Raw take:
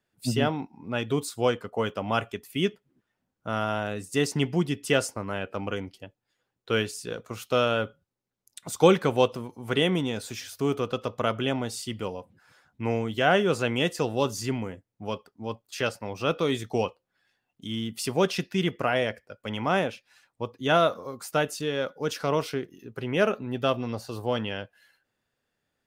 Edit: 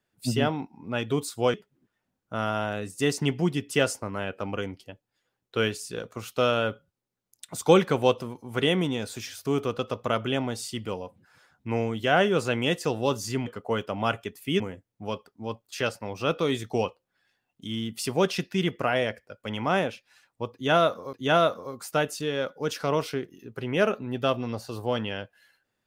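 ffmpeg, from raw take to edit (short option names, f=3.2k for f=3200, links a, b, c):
-filter_complex "[0:a]asplit=5[a][b][c][d][e];[a]atrim=end=1.542[f];[b]atrim=start=2.678:end=14.602[g];[c]atrim=start=1.538:end=2.682[h];[d]atrim=start=14.598:end=21.132[i];[e]atrim=start=20.528[j];[f][g]acrossfade=d=0.004:c1=hsin:c2=hsin[k];[k][h]acrossfade=d=0.004:c1=hsin:c2=hsin[l];[l][i]acrossfade=d=0.004:c1=hsin:c2=hsin[m];[m][j]acrossfade=d=0.004:c1=hsin:c2=hsin"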